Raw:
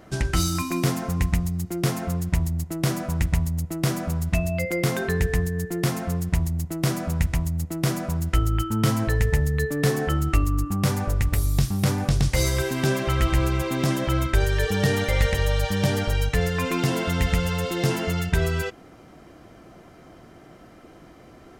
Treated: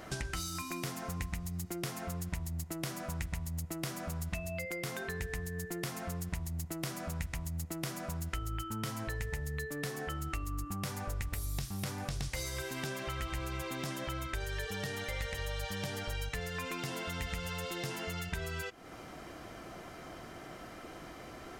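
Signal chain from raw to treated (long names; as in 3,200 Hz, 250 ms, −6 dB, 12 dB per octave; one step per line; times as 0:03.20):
low-shelf EQ 480 Hz −11 dB
downward compressor 6 to 1, threshold −43 dBFS, peak gain reduction 18.5 dB
low-shelf EQ 130 Hz +5.5 dB
level +5 dB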